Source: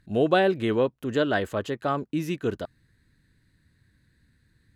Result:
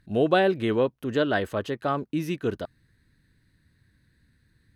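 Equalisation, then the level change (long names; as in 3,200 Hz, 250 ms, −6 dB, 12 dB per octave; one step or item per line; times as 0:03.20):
notch filter 7,200 Hz, Q 6.3
0.0 dB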